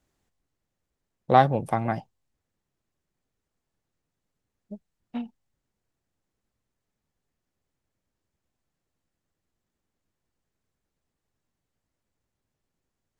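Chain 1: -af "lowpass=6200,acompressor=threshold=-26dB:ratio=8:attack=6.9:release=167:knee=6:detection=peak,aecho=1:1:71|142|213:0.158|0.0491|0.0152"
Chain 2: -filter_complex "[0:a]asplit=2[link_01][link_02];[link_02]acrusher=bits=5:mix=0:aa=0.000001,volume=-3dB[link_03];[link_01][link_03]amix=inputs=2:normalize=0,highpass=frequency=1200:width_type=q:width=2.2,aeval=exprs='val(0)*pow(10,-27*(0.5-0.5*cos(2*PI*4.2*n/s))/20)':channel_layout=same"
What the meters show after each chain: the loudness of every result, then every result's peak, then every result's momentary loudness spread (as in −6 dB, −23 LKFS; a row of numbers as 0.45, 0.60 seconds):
−34.5, −27.5 LKFS; −12.5, −3.5 dBFS; 14, 8 LU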